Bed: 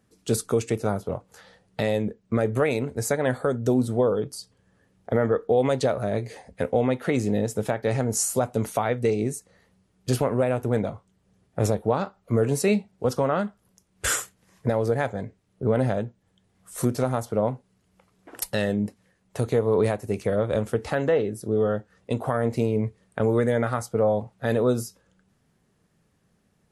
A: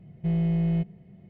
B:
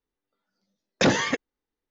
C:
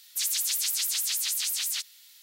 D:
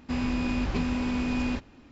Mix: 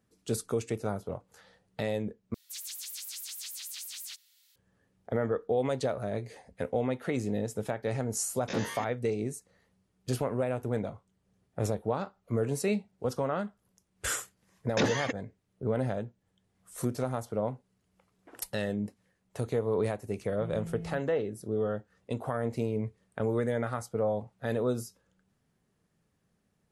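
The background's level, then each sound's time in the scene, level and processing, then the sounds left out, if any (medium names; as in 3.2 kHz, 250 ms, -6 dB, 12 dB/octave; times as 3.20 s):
bed -7.5 dB
2.34 s: replace with C -12 dB + peak limiter -18.5 dBFS
7.49 s: add B -12.5 dB + spectrogram pixelated in time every 50 ms
13.76 s: add B -8 dB
20.16 s: add A -16 dB
not used: D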